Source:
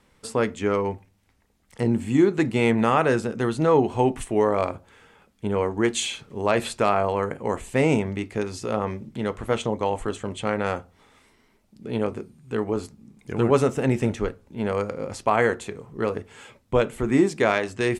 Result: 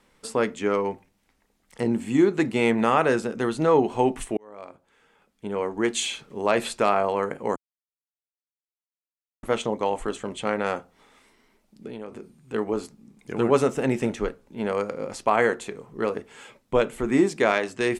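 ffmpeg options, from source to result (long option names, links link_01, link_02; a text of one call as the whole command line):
ffmpeg -i in.wav -filter_complex "[0:a]asettb=1/sr,asplit=3[link_01][link_02][link_03];[link_01]atrim=end=11.874[link_04];[link_02]atrim=start=11.87:end=12.54,asetpts=PTS-STARTPTS,afade=type=in:duration=0.004:curve=qsin,afade=type=out:start_time=0.666:duration=0.004:curve=qsin,acompressor=threshold=-33dB:ratio=4:attack=3.2:release=140:knee=1:detection=peak[link_05];[link_03]atrim=start=12.536[link_06];[link_04][link_05]acrossfade=duration=0.004:curve1=hsin:curve2=qsin[link_07];[link_07][link_06]acrossfade=duration=0.004:curve1=qsin:curve2=hsin,asplit=4[link_08][link_09][link_10][link_11];[link_08]atrim=end=4.37,asetpts=PTS-STARTPTS,afade=type=out:start_time=4.366:duration=0.004:curve=hsin[link_12];[link_09]atrim=start=4.37:end=7.56,asetpts=PTS-STARTPTS,afade=type=in:duration=1.72,afade=type=out:start_time=3.186:duration=0.004:curve=hsin[link_13];[link_10]atrim=start=7.56:end=9.43,asetpts=PTS-STARTPTS,volume=0[link_14];[link_11]atrim=start=9.43,asetpts=PTS-STARTPTS,afade=type=in:duration=0.004:curve=hsin[link_15];[link_12][link_13][link_14][link_15]concat=n=4:v=0:a=1,equalizer=frequency=88:width_type=o:width=0.93:gain=-14.5" out.wav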